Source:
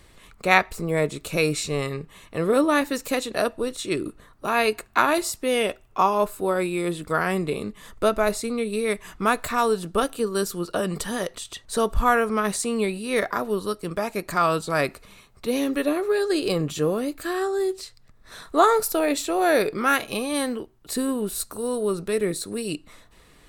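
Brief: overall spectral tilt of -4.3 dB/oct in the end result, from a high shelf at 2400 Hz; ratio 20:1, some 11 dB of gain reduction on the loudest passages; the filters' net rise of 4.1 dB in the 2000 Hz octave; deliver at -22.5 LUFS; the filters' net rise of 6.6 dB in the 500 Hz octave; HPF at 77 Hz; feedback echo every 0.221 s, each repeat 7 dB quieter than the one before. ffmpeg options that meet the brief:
-af "highpass=77,equalizer=f=500:t=o:g=8,equalizer=f=2k:t=o:g=8,highshelf=f=2.4k:g=-7,acompressor=threshold=-19dB:ratio=20,aecho=1:1:221|442|663|884|1105:0.447|0.201|0.0905|0.0407|0.0183,volume=2dB"

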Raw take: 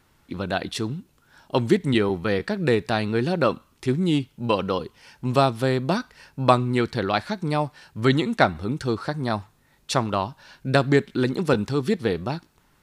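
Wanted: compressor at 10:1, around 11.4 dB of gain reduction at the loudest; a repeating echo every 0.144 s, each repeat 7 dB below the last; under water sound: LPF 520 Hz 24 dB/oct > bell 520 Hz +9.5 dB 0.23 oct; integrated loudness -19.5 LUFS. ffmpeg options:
-af "acompressor=threshold=-24dB:ratio=10,lowpass=f=520:w=0.5412,lowpass=f=520:w=1.3066,equalizer=f=520:t=o:w=0.23:g=9.5,aecho=1:1:144|288|432|576|720:0.447|0.201|0.0905|0.0407|0.0183,volume=10.5dB"

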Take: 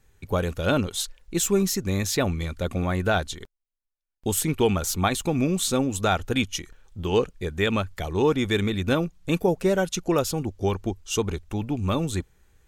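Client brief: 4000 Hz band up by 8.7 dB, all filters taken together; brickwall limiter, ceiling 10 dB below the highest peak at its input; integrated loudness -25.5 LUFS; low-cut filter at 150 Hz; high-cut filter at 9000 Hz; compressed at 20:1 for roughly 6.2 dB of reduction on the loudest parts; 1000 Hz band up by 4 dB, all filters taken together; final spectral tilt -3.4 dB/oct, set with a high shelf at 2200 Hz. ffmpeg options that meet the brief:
-af "highpass=150,lowpass=9k,equalizer=f=1k:t=o:g=4,highshelf=f=2.2k:g=5.5,equalizer=f=4k:t=o:g=5.5,acompressor=threshold=-20dB:ratio=20,volume=4dB,alimiter=limit=-14dB:level=0:latency=1"

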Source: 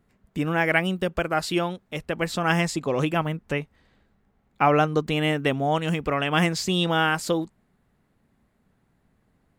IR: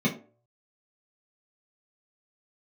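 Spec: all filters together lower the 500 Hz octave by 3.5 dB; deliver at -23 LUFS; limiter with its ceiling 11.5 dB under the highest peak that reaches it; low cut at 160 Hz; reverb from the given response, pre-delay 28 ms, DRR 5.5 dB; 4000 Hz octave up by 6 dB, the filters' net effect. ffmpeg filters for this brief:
-filter_complex "[0:a]highpass=160,equalizer=f=500:t=o:g=-4.5,equalizer=f=4k:t=o:g=8.5,alimiter=limit=-16.5dB:level=0:latency=1,asplit=2[a][b];[1:a]atrim=start_sample=2205,adelay=28[c];[b][c]afir=irnorm=-1:irlink=0,volume=-16.5dB[d];[a][d]amix=inputs=2:normalize=0,volume=2dB"

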